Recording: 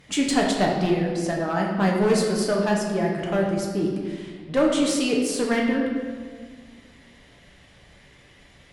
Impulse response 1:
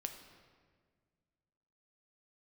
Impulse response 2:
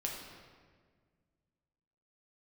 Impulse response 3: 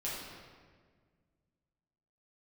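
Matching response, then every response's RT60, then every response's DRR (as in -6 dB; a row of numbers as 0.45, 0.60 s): 2; 1.7, 1.7, 1.7 s; 5.5, -1.5, -8.0 dB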